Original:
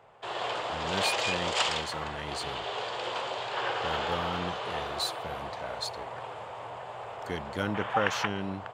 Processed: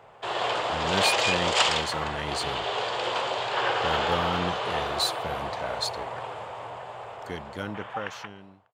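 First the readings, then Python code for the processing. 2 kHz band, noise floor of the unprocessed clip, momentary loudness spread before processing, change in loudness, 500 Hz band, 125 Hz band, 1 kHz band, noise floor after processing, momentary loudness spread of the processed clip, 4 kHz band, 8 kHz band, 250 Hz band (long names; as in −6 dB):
+4.0 dB, −42 dBFS, 13 LU, +5.0 dB, +4.5 dB, +3.5 dB, +4.5 dB, −50 dBFS, 16 LU, +5.0 dB, +5.0 dB, +2.0 dB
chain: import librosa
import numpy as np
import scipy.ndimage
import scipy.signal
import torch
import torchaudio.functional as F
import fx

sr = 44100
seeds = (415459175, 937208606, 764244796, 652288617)

y = fx.fade_out_tail(x, sr, length_s=2.91)
y = y * 10.0 ** (5.5 / 20.0)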